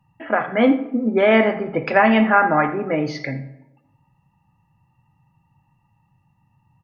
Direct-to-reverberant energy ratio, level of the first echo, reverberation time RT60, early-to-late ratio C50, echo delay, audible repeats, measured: 11.0 dB, -17.5 dB, 0.95 s, 12.0 dB, 82 ms, 1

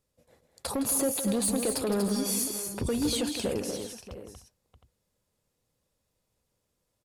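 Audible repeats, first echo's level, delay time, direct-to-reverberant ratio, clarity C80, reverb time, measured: 5, -10.0 dB, 0.162 s, none, none, none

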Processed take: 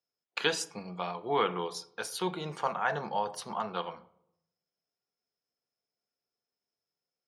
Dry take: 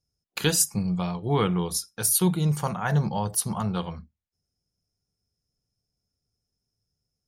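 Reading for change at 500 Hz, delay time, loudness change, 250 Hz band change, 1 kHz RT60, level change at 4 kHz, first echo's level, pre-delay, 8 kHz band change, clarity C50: -3.0 dB, none, -8.5 dB, -14.0 dB, 0.65 s, -4.5 dB, none, 4 ms, -17.0 dB, 17.5 dB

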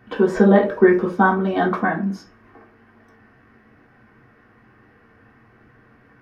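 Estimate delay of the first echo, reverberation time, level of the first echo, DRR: none, 0.40 s, none, -4.0 dB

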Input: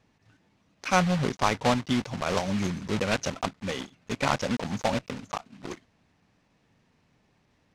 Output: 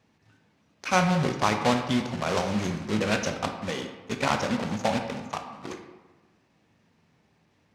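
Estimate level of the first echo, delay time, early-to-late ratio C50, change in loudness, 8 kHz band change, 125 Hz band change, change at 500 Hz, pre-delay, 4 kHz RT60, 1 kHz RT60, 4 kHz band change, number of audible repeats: none, none, 7.0 dB, +1.0 dB, +0.5 dB, +0.5 dB, +1.0 dB, 12 ms, 0.70 s, 1.3 s, +1.0 dB, none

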